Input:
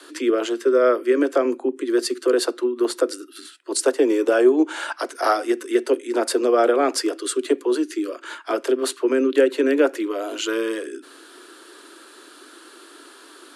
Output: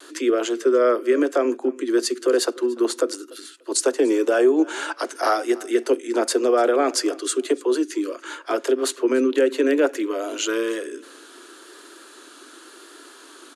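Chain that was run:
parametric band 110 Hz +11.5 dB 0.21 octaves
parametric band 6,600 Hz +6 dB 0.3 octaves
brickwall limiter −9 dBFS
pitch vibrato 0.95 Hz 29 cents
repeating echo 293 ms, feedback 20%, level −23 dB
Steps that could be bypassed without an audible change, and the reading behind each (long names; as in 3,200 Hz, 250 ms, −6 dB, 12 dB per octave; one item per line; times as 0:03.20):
parametric band 110 Hz: nothing at its input below 210 Hz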